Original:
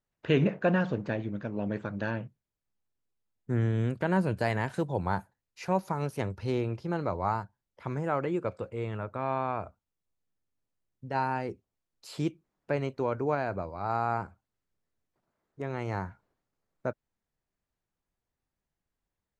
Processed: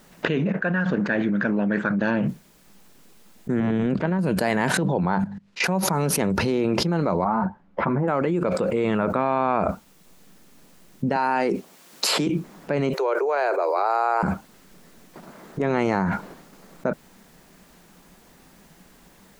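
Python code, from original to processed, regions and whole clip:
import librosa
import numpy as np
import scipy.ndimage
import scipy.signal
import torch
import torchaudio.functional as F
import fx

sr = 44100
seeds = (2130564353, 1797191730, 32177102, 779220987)

y = fx.chain(x, sr, fx.peak_eq(hz=1600.0, db=12.0, octaves=0.7),
    fx.upward_expand(threshold_db=-33.0, expansion=2.5), at=(0.52, 2.01))
y = fx.chain(y, sr, fx.level_steps(step_db=9),
    fx.air_absorb(metres=120.0),
    fx.transformer_sat(knee_hz=430.0), at=(3.6, 4.19))
y = fx.chain(y, sr, fx.lowpass(hz=4200.0, slope=12),
    fx.hum_notches(base_hz=50, count=5),
    fx.level_steps(step_db=23), at=(4.77, 5.64))
y = fx.chain(y, sr, fx.lowpass(hz=1300.0, slope=12),
    fx.peak_eq(hz=430.0, db=-5.5, octaves=0.3),
    fx.ensemble(), at=(7.24, 8.08))
y = fx.chain(y, sr, fx.highpass(hz=430.0, slope=6),
    fx.band_squash(depth_pct=40), at=(11.16, 12.27))
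y = fx.chain(y, sr, fx.steep_highpass(hz=360.0, slope=72),
    fx.high_shelf(hz=8500.0, db=8.0), at=(12.93, 14.23))
y = fx.low_shelf_res(y, sr, hz=140.0, db=-7.0, q=3.0)
y = fx.env_flatten(y, sr, amount_pct=100)
y = y * 10.0 ** (-4.0 / 20.0)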